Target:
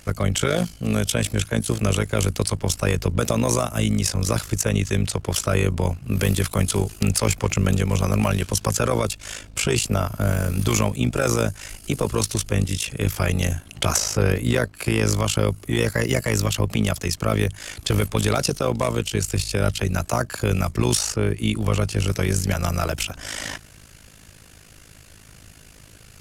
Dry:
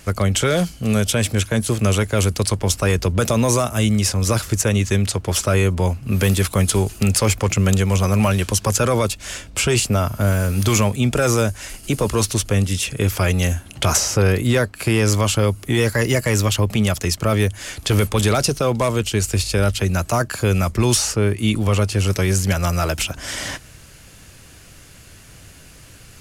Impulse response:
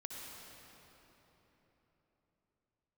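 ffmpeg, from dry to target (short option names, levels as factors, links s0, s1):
-af "tremolo=f=53:d=0.824"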